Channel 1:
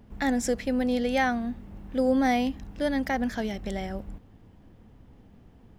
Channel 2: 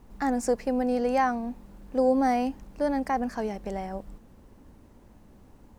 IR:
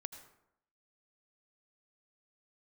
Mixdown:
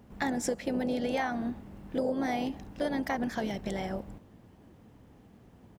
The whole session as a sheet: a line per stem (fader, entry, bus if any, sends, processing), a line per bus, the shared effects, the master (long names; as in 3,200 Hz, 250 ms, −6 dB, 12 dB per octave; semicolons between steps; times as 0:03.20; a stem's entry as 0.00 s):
−1.0 dB, 0.00 s, no send, no processing
−11.0 dB, 1.1 ms, send −0.5 dB, random phases in short frames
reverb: on, RT60 0.75 s, pre-delay 73 ms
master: high-pass filter 100 Hz 6 dB per octave; downward compressor 6 to 1, threshold −27 dBFS, peak gain reduction 9.5 dB